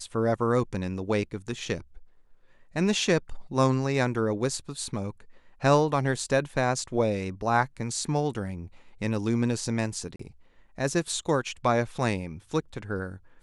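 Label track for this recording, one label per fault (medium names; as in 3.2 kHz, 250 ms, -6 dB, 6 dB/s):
10.160000	10.190000	dropout 34 ms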